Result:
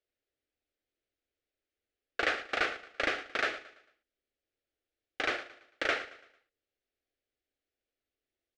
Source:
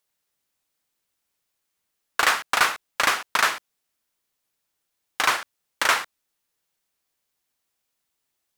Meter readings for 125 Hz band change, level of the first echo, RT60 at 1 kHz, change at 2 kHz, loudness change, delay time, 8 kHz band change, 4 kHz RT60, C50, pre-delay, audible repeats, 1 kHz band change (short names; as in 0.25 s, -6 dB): -6.5 dB, -16.0 dB, none, -9.0 dB, -10.5 dB, 0.112 s, -22.5 dB, none, none, none, 3, -14.0 dB